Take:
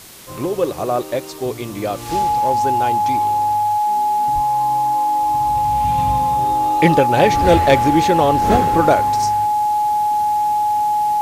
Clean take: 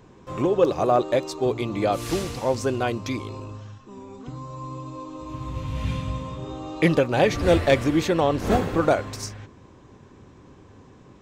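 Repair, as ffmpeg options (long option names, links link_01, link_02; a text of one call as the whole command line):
ffmpeg -i in.wav -filter_complex "[0:a]bandreject=frequency=840:width=30,asplit=3[link_01][link_02][link_03];[link_01]afade=type=out:start_time=4.34:duration=0.02[link_04];[link_02]highpass=frequency=140:width=0.5412,highpass=frequency=140:width=1.3066,afade=type=in:start_time=4.34:duration=0.02,afade=type=out:start_time=4.46:duration=0.02[link_05];[link_03]afade=type=in:start_time=4.46:duration=0.02[link_06];[link_04][link_05][link_06]amix=inputs=3:normalize=0,afwtdn=0.011,asetnsamples=nb_out_samples=441:pad=0,asendcmd='5.98 volume volume -5dB',volume=0dB" out.wav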